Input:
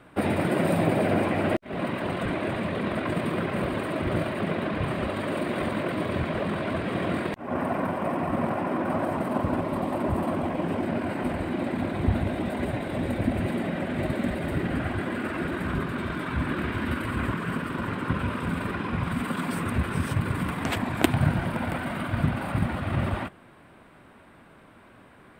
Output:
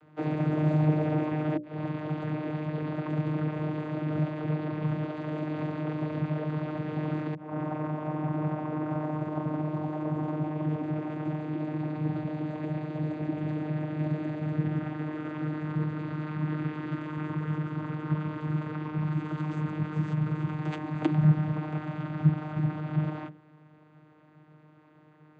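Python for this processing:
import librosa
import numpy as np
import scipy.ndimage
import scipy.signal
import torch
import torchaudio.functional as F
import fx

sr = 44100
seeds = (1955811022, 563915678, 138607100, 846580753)

y = fx.vocoder(x, sr, bands=16, carrier='saw', carrier_hz=153.0)
y = fx.hum_notches(y, sr, base_hz=60, count=10)
y = F.gain(torch.from_numpy(y), -1.0).numpy()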